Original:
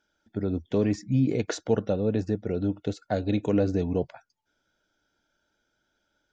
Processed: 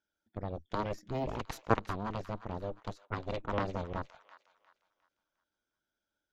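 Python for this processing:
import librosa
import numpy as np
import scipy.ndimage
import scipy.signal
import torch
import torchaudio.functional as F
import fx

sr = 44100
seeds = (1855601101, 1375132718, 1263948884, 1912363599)

y = fx.cheby_harmonics(x, sr, harmonics=(3, 6), levels_db=(-8, -20), full_scale_db=-10.0)
y = fx.env_lowpass(y, sr, base_hz=390.0, full_db=-29.0, at=(3.05, 3.69))
y = fx.echo_wet_highpass(y, sr, ms=355, feedback_pct=33, hz=1400.0, wet_db=-11.5)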